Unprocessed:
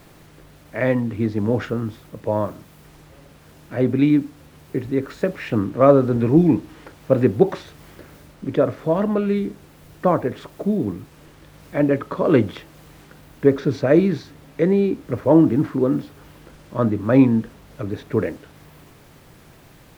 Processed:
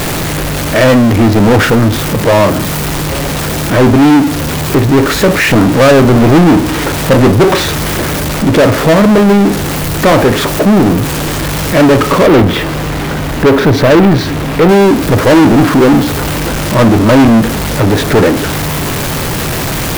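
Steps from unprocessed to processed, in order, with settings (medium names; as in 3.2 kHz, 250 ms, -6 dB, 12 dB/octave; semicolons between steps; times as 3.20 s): jump at every zero crossing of -27 dBFS; 12.26–14.69 s: treble shelf 4.3 kHz -7.5 dB; waveshaping leveller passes 5; trim -1 dB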